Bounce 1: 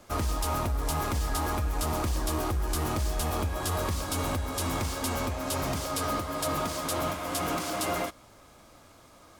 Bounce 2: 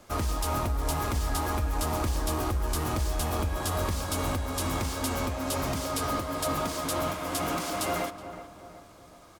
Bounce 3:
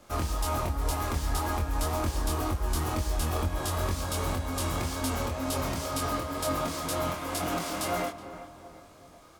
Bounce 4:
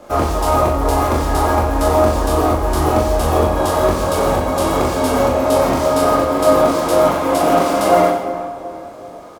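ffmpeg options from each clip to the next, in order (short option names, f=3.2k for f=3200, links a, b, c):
-filter_complex "[0:a]asplit=2[a][b];[b]adelay=371,lowpass=f=1.6k:p=1,volume=-11dB,asplit=2[c][d];[d]adelay=371,lowpass=f=1.6k:p=1,volume=0.5,asplit=2[e][f];[f]adelay=371,lowpass=f=1.6k:p=1,volume=0.5,asplit=2[g][h];[h]adelay=371,lowpass=f=1.6k:p=1,volume=0.5,asplit=2[i][j];[j]adelay=371,lowpass=f=1.6k:p=1,volume=0.5[k];[a][c][e][g][i][k]amix=inputs=6:normalize=0"
-af "flanger=delay=22.5:depth=2.6:speed=2,volume=2dB"
-filter_complex "[0:a]equalizer=f=540:w=0.49:g=13.5,asplit=2[a][b];[b]aecho=0:1:40|90|152.5|230.6|328.3:0.631|0.398|0.251|0.158|0.1[c];[a][c]amix=inputs=2:normalize=0,volume=5dB"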